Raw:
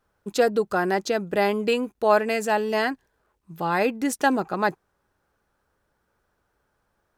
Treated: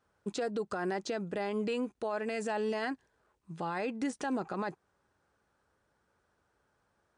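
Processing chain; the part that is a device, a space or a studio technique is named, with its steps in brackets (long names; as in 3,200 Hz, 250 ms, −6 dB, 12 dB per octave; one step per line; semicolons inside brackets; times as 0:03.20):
podcast mastering chain (high-pass filter 61 Hz; de-essing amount 70%; downward compressor 3 to 1, threshold −25 dBFS, peak gain reduction 9 dB; brickwall limiter −23 dBFS, peak gain reduction 8.5 dB; level −2 dB; MP3 96 kbit/s 22,050 Hz)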